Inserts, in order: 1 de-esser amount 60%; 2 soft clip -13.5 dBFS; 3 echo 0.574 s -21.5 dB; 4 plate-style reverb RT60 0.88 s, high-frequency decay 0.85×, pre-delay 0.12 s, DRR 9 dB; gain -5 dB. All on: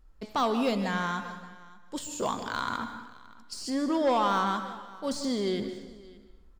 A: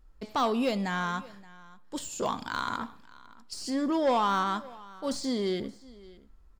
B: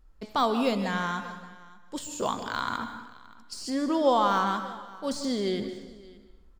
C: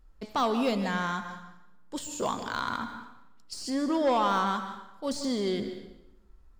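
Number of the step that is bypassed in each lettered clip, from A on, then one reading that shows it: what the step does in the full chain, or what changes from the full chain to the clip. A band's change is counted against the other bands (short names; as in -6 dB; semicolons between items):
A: 4, momentary loudness spread change -2 LU; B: 2, distortion -17 dB; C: 3, momentary loudness spread change -2 LU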